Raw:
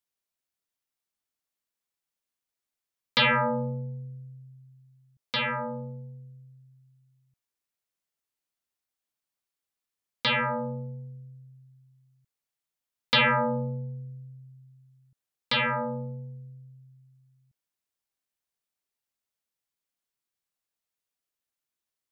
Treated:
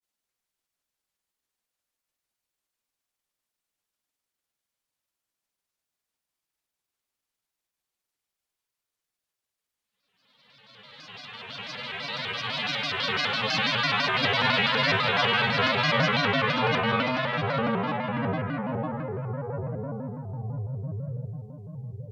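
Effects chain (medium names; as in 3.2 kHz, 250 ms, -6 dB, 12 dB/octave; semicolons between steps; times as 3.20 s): Paulstretch 8.5×, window 1.00 s, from 8.58 s; granulator, spray 12 ms, pitch spread up and down by 3 st; on a send at -12 dB: reverberation RT60 0.25 s, pre-delay 139 ms; on the sum: vibrato with a chosen wave square 6 Hz, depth 160 cents; trim +4.5 dB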